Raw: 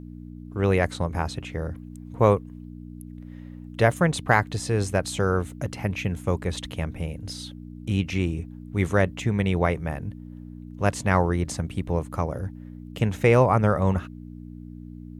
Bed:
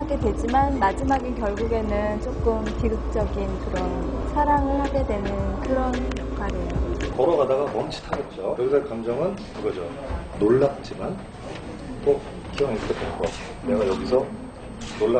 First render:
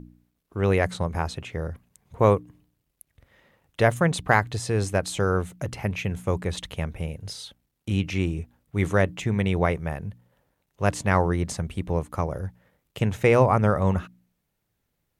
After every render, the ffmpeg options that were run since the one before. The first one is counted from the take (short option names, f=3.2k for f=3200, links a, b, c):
-af "bandreject=f=60:t=h:w=4,bandreject=f=120:t=h:w=4,bandreject=f=180:t=h:w=4,bandreject=f=240:t=h:w=4,bandreject=f=300:t=h:w=4"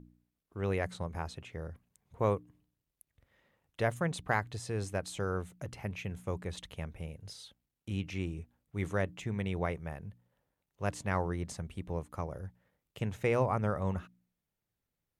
-af "volume=-11dB"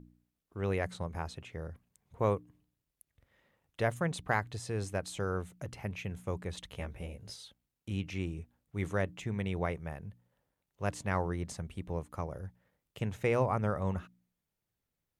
-filter_complex "[0:a]asettb=1/sr,asplit=3[a][b][c];[a]atrim=end=6.734[d];[b]atrim=start=6.73:end=7.36,asetpts=PTS-STARTPTS,afade=t=in:d=0.004:c=qsin,afade=t=out:st=0.626:d=0.004:c=qsin,asplit=2[e][f];[f]adelay=16,volume=-2dB[g];[e][g]amix=inputs=2:normalize=0,atrim=end_sample=27783[h];[c]atrim=start=7.356[i];[d][h]acrossfade=d=0.004:c1=hsin:c2=qsin[j];[j][i]acrossfade=d=0.004:c1=qsin:c2=hsin"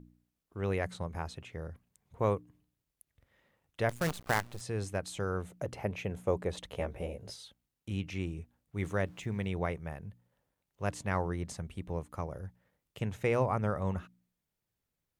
-filter_complex "[0:a]asettb=1/sr,asplit=3[a][b][c];[a]atrim=end=3.894[d];[b]atrim=start=3.89:end=4.61,asetpts=PTS-STARTPTS,afade=t=in:d=0.004:c=qsin,afade=t=out:st=0.716:d=0.004:c=qsin,acrusher=bits=6:dc=4:mix=0:aa=0.000001[e];[c]atrim=start=4.606[f];[d][e]acrossfade=d=0.004:c1=hsin:c2=qsin[g];[g][f]acrossfade=d=0.004:c1=qsin:c2=hsin,asettb=1/sr,asplit=3[h][i][j];[h]atrim=end=5.444[k];[i]atrim=start=5.44:end=7.31,asetpts=PTS-STARTPTS,afade=t=in:d=0.004:c=qsin,afade=t=out:st=1.866:d=0.004:c=qsin,equalizer=f=540:w=0.8:g=9.5[l];[j]atrim=start=7.306[m];[k][l]acrossfade=d=0.004:c1=hsin:c2=qsin[n];[n][m]acrossfade=d=0.004:c1=qsin:c2=hsin,asettb=1/sr,asplit=3[o][p][q];[o]atrim=end=8.844[r];[p]atrim=start=8.84:end=9.47,asetpts=PTS-STARTPTS,afade=t=in:d=0.004:c=qsin,afade=t=out:st=0.626:d=0.004:c=qsin,aeval=exprs='val(0)*gte(abs(val(0)),0.00119)':c=same[s];[q]atrim=start=9.466[t];[r][s]acrossfade=d=0.004:c1=hsin:c2=qsin[u];[u][t]acrossfade=d=0.004:c1=qsin:c2=hsin"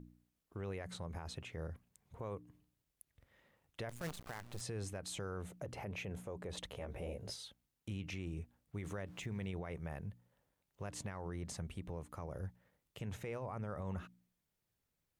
-af "acompressor=threshold=-32dB:ratio=6,alimiter=level_in=10.5dB:limit=-24dB:level=0:latency=1:release=47,volume=-10.5dB"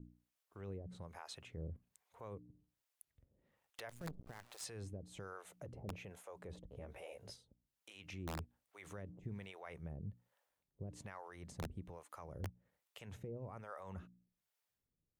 -filter_complex "[0:a]acrossover=split=520[a][b];[a]aeval=exprs='val(0)*(1-1/2+1/2*cos(2*PI*1.2*n/s))':c=same[c];[b]aeval=exprs='val(0)*(1-1/2-1/2*cos(2*PI*1.2*n/s))':c=same[d];[c][d]amix=inputs=2:normalize=0,aeval=exprs='(mod(63.1*val(0)+1,2)-1)/63.1':c=same"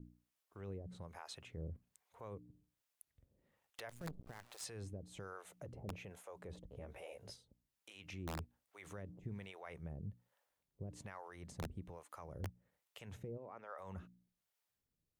-filter_complex "[0:a]asplit=3[a][b][c];[a]afade=t=out:st=13.37:d=0.02[d];[b]highpass=300,lowpass=4k,afade=t=in:st=13.37:d=0.02,afade=t=out:st=13.77:d=0.02[e];[c]afade=t=in:st=13.77:d=0.02[f];[d][e][f]amix=inputs=3:normalize=0"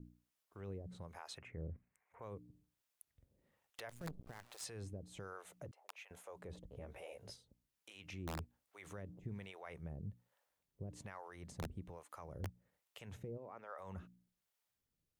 -filter_complex "[0:a]asettb=1/sr,asplit=3[a][b][c];[a]atrim=end=1.384[d];[b]atrim=start=1.38:end=2.22,asetpts=PTS-STARTPTS,afade=t=in:d=0.004:c=qsin,afade=t=out:st=0.836:d=0.004:c=qsin,highshelf=f=2.8k:t=q:w=3:g=-9.5[e];[c]atrim=start=2.216[f];[d][e]acrossfade=d=0.004:c1=hsin:c2=qsin[g];[g][f]acrossfade=d=0.004:c1=qsin:c2=hsin,asettb=1/sr,asplit=3[h][i][j];[h]atrim=end=5.714[k];[i]atrim=start=5.71:end=6.11,asetpts=PTS-STARTPTS,afade=t=in:d=0.004:c=qsin,afade=t=out:st=0.396:d=0.004:c=qsin,highpass=f=870:w=0.5412,highpass=f=870:w=1.3066[l];[j]atrim=start=6.106[m];[k][l]acrossfade=d=0.004:c1=hsin:c2=qsin[n];[n][m]acrossfade=d=0.004:c1=qsin:c2=hsin"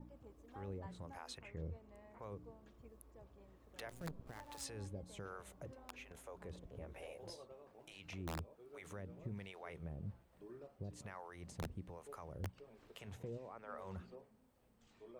-filter_complex "[1:a]volume=-36.5dB[a];[0:a][a]amix=inputs=2:normalize=0"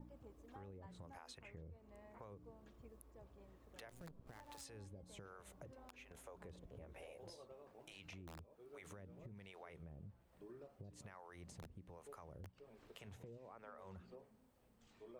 -af "alimiter=level_in=15dB:limit=-24dB:level=0:latency=1:release=421,volume=-15dB,acompressor=threshold=-52dB:ratio=6"